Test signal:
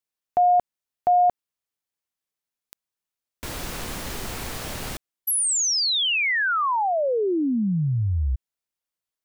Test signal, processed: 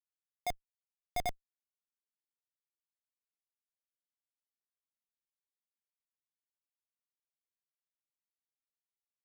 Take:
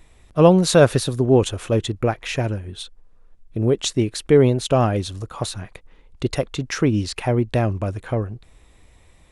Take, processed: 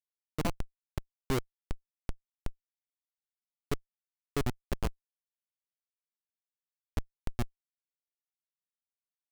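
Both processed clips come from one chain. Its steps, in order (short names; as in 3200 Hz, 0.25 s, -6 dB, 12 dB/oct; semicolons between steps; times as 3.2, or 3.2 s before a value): random spectral dropouts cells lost 69%; Schmitt trigger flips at -14.5 dBFS; gain -1.5 dB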